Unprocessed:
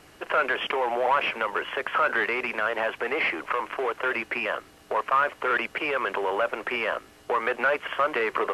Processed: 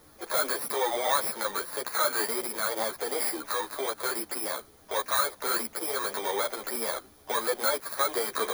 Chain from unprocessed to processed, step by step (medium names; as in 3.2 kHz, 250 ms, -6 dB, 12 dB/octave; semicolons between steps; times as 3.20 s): bit-reversed sample order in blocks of 16 samples; harmony voices +7 st -14 dB; three-phase chorus